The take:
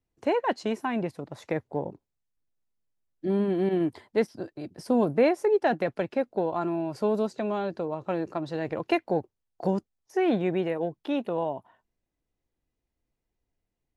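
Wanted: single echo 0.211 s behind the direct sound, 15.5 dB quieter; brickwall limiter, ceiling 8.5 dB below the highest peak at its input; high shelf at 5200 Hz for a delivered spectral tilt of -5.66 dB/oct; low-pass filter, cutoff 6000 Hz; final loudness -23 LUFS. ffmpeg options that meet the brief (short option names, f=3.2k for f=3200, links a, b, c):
-af "lowpass=6k,highshelf=f=5.2k:g=9,alimiter=limit=-19.5dB:level=0:latency=1,aecho=1:1:211:0.168,volume=8dB"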